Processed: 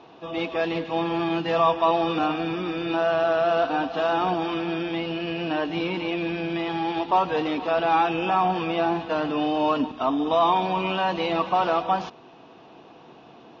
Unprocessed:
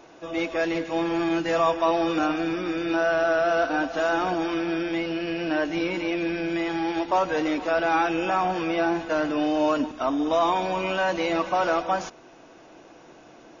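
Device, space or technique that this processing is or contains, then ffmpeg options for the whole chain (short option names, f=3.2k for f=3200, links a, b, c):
guitar cabinet: -af "highpass=95,equalizer=f=320:t=q:w=4:g=-7,equalizer=f=570:t=q:w=4:g=-9,equalizer=f=1.5k:t=q:w=4:g=-9,equalizer=f=2.1k:t=q:w=4:g=-9,lowpass=f=3.9k:w=0.5412,lowpass=f=3.9k:w=1.3066,volume=5dB"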